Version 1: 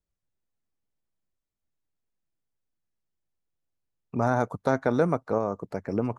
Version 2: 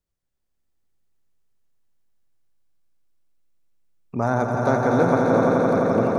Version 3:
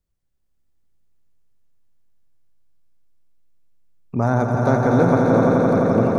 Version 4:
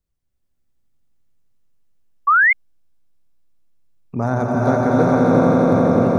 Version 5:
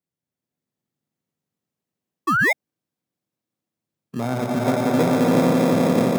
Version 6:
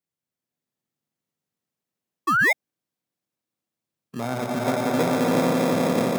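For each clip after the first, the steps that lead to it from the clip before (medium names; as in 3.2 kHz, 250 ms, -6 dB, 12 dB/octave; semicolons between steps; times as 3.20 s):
echo with a slow build-up 86 ms, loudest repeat 5, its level -5.5 dB; trim +2 dB
bass shelf 240 Hz +8 dB
gated-style reverb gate 430 ms rising, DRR 1 dB; painted sound rise, 2.27–2.53 s, 1.1–2.2 kHz -11 dBFS; trim -1.5 dB
in parallel at -5 dB: sample-and-hold 30×; on the sum: high-pass 130 Hz 24 dB/octave; trim -6 dB
bass shelf 480 Hz -6 dB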